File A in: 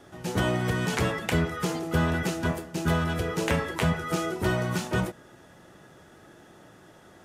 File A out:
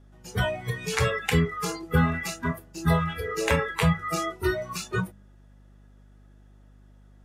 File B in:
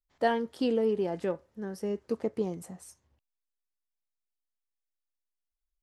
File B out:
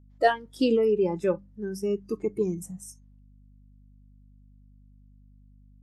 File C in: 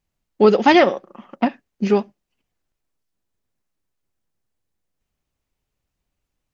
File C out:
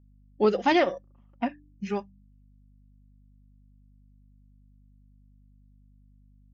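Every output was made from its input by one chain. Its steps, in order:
spectral noise reduction 19 dB; de-hum 98.4 Hz, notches 3; hum 50 Hz, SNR 25 dB; normalise loudness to -27 LUFS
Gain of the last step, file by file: +4.0 dB, +6.5 dB, -9.0 dB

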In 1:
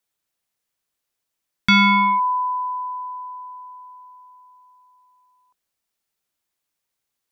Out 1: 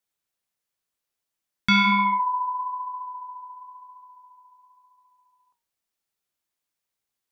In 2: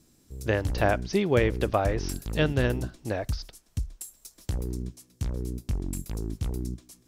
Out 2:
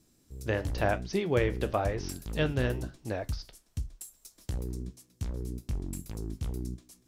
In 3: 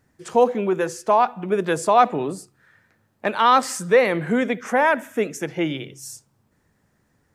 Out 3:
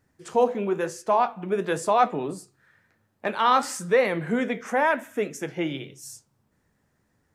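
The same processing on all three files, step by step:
flange 0.98 Hz, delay 9.5 ms, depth 7.3 ms, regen -68%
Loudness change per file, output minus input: -4.5 LU, -4.0 LU, -4.5 LU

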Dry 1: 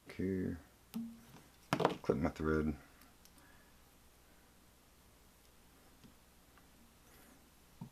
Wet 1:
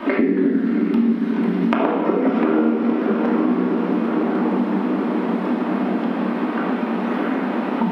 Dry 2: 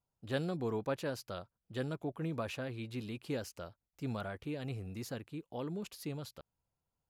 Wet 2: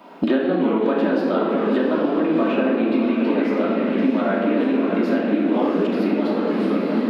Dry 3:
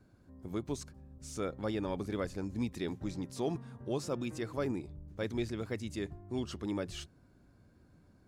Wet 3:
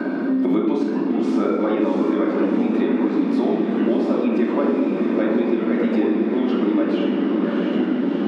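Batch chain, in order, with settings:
compression, threshold -39 dBFS; distance through air 410 m; echo that smears into a reverb 674 ms, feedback 57%, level -7.5 dB; simulated room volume 1000 m³, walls mixed, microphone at 2.7 m; ever faster or slower copies 252 ms, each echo -4 st, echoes 3, each echo -6 dB; brick-wall FIR high-pass 190 Hz; three bands compressed up and down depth 100%; normalise loudness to -20 LUFS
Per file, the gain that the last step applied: +21.5 dB, +18.0 dB, +17.0 dB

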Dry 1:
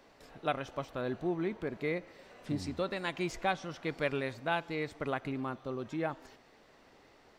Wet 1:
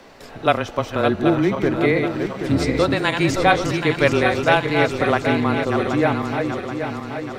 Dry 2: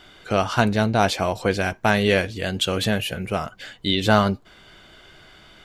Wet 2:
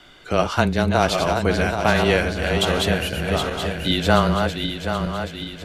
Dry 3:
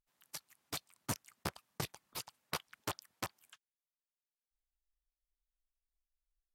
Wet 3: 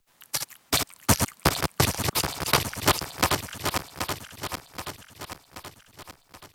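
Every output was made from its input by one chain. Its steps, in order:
backward echo that repeats 389 ms, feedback 72%, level -5.5 dB; frequency shift -19 Hz; peak normalisation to -2 dBFS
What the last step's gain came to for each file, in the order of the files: +15.0 dB, 0.0 dB, +17.5 dB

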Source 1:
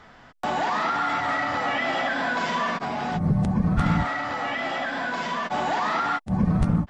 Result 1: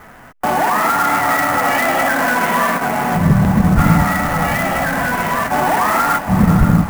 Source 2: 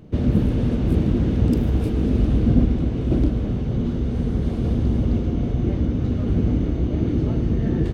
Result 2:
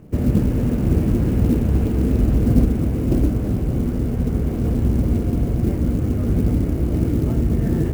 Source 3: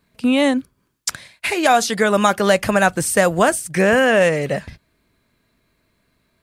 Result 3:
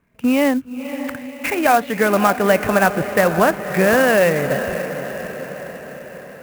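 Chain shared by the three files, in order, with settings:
steep low-pass 2.8 kHz 36 dB/octave; echo that smears into a reverb 551 ms, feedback 58%, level -10 dB; sampling jitter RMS 0.027 ms; peak normalisation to -2 dBFS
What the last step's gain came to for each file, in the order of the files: +9.5 dB, +1.0 dB, 0.0 dB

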